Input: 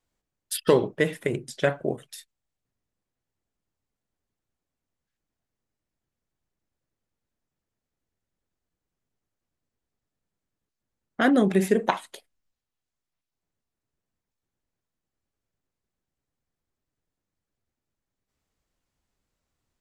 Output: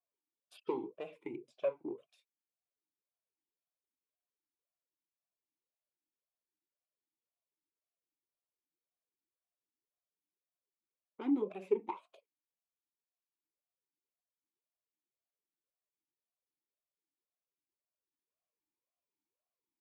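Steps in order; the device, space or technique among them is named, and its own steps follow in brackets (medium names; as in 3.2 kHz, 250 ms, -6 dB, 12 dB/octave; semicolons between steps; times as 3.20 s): talk box (valve stage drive 11 dB, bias 0.35; talking filter a-u 1.9 Hz); trim -3.5 dB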